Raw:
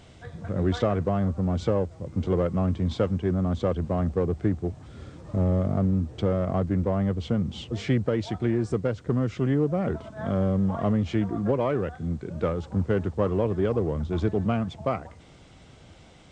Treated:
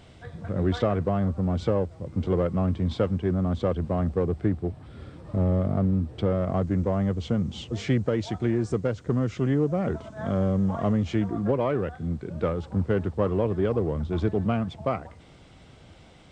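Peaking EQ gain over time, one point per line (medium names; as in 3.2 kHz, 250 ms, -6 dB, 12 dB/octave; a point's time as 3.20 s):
peaking EQ 6.6 kHz 0.52 oct
4.28 s -5 dB
4.80 s -14 dB
5.40 s -8 dB
6.27 s -8 dB
6.71 s +3 dB
11.06 s +3 dB
11.55 s -4.5 dB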